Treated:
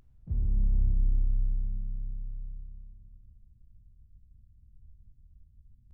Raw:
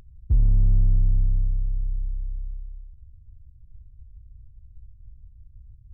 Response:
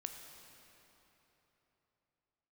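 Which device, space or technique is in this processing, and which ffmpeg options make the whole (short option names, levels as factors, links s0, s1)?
shimmer-style reverb: -filter_complex "[0:a]asplit=2[s0][s1];[s1]asetrate=88200,aresample=44100,atempo=0.5,volume=0.282[s2];[s0][s2]amix=inputs=2:normalize=0[s3];[1:a]atrim=start_sample=2205[s4];[s3][s4]afir=irnorm=-1:irlink=0,volume=0.376"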